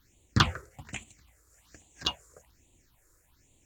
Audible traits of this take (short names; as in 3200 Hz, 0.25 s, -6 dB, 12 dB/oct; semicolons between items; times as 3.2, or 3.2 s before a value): phasing stages 6, 1.2 Hz, lowest notch 200–1500 Hz; Nellymoser